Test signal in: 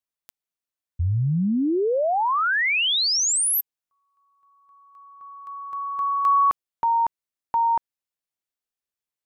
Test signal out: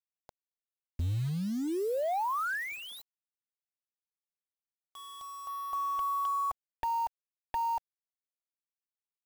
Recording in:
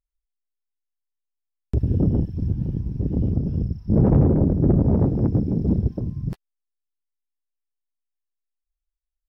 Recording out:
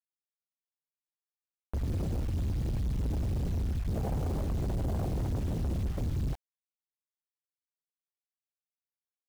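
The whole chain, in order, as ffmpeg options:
-af "lowpass=f=760:t=q:w=4.1,acompressor=threshold=-31dB:ratio=8:attack=13:release=31:knee=1:detection=rms,asubboost=boost=5.5:cutoff=85,asoftclip=type=hard:threshold=-29dB,acrusher=bits=7:mix=0:aa=0.000001"

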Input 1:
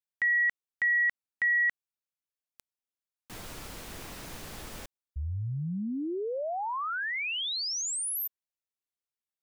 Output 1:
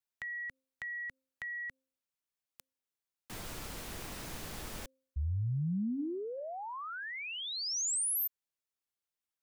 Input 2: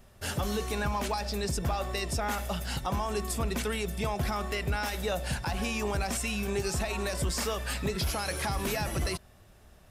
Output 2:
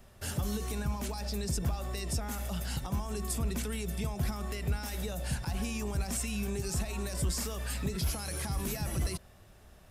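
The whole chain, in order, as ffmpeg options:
-filter_complex "[0:a]bandreject=f=263.9:t=h:w=4,bandreject=f=527.8:t=h:w=4,acrossover=split=270|5900[a][b][c];[b]acompressor=threshold=-41dB:ratio=6:attack=4.8:release=64:knee=6[d];[a][d][c]amix=inputs=3:normalize=0"

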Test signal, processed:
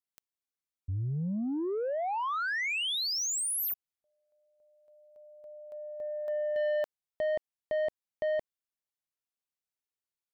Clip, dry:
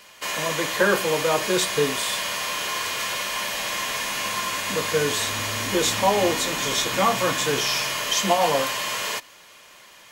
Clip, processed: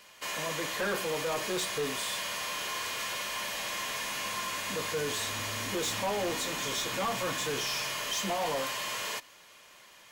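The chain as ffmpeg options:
-af "asoftclip=type=tanh:threshold=-20.5dB,volume=-6.5dB"

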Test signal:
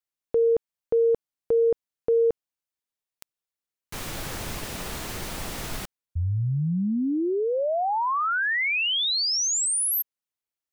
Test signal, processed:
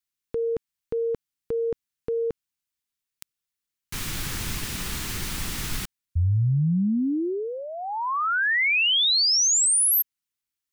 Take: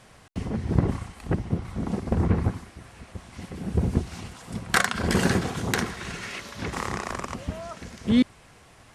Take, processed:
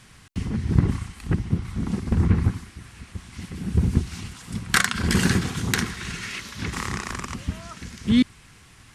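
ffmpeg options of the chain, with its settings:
-af "equalizer=f=610:t=o:w=1.3:g=-14.5,volume=4.5dB"

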